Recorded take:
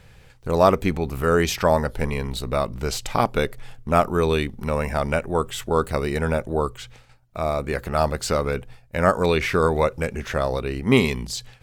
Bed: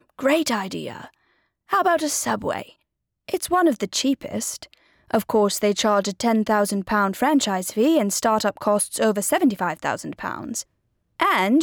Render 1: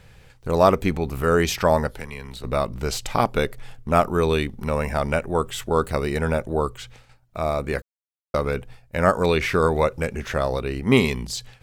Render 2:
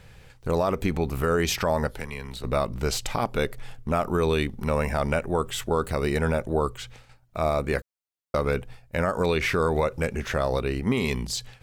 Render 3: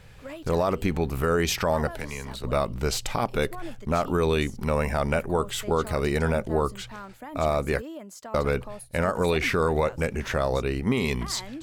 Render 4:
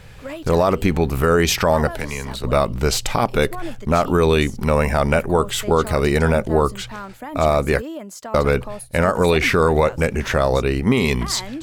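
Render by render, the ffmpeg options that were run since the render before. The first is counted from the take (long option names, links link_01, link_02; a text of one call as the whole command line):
ffmpeg -i in.wav -filter_complex "[0:a]asettb=1/sr,asplit=3[link_01][link_02][link_03];[link_01]atrim=end=1.874[link_04];[link_02]atrim=start=1.87:end=2.44,asetpts=PTS-STARTPTS,afade=type=in:duration=0.004:curve=qsin,afade=type=out:start_time=0.566:duration=0.004:curve=qsin,acrossover=split=110|1200|2400[link_05][link_06][link_07][link_08];[link_05]acompressor=threshold=-42dB:ratio=3[link_09];[link_06]acompressor=threshold=-40dB:ratio=3[link_10];[link_07]acompressor=threshold=-39dB:ratio=3[link_11];[link_08]acompressor=threshold=-44dB:ratio=3[link_12];[link_09][link_10][link_11][link_12]amix=inputs=4:normalize=0[link_13];[link_03]atrim=start=2.436[link_14];[link_04][link_13]acrossfade=duration=0.004:curve1=hsin:curve2=qsin[link_15];[link_15][link_14]acrossfade=duration=0.004:curve1=qsin:curve2=hsin,asplit=3[link_16][link_17][link_18];[link_16]atrim=end=7.82,asetpts=PTS-STARTPTS,afade=type=out:start_time=7.816:duration=0.004:curve=hsin[link_19];[link_17]atrim=start=7.82:end=8.34,asetpts=PTS-STARTPTS,volume=0[link_20];[link_18]atrim=start=8.34,asetpts=PTS-STARTPTS,afade=type=in:duration=0.004:curve=hsin[link_21];[link_19][link_20][link_21]concat=n=3:v=0:a=1" out.wav
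ffmpeg -i in.wav -af "alimiter=limit=-13.5dB:level=0:latency=1:release=98" out.wav
ffmpeg -i in.wav -i bed.wav -filter_complex "[1:a]volume=-21dB[link_01];[0:a][link_01]amix=inputs=2:normalize=0" out.wav
ffmpeg -i in.wav -af "volume=7.5dB" out.wav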